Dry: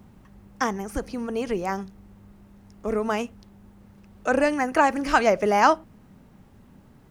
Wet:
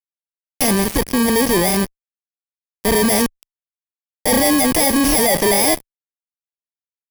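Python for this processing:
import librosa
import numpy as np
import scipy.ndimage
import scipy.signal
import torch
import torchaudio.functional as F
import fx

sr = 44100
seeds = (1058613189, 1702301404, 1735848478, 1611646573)

y = fx.bit_reversed(x, sr, seeds[0], block=32)
y = fx.fuzz(y, sr, gain_db=41.0, gate_db=-37.0)
y = fx.cheby_harmonics(y, sr, harmonics=(6,), levels_db=(-20,), full_scale_db=-9.5)
y = y * librosa.db_to_amplitude(1.0)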